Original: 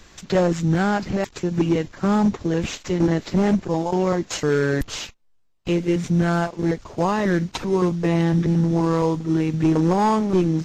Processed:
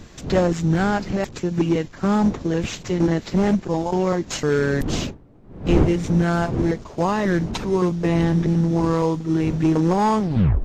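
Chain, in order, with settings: tape stop at the end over 0.45 s; wind noise 250 Hz -30 dBFS

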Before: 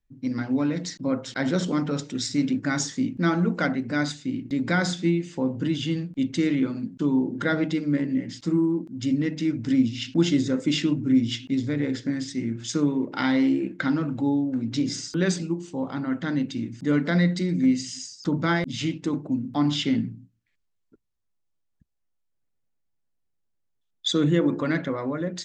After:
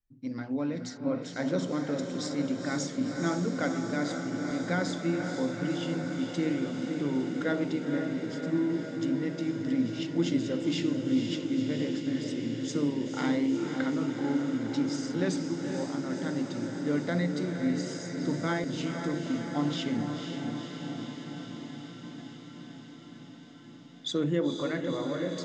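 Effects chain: diffused feedback echo 0.495 s, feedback 78%, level -6 dB; dynamic EQ 560 Hz, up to +6 dB, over -38 dBFS, Q 1.2; gain -9 dB

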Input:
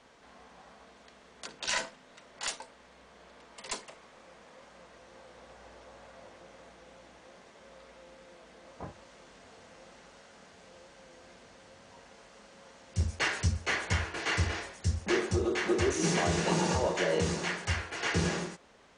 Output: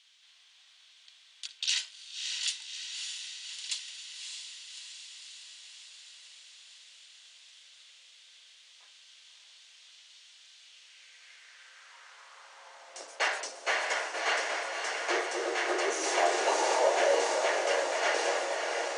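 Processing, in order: Chebyshev high-pass 270 Hz, order 5; high-pass sweep 3300 Hz -> 640 Hz, 10.58–13.1; diffused feedback echo 0.608 s, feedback 69%, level -4.5 dB

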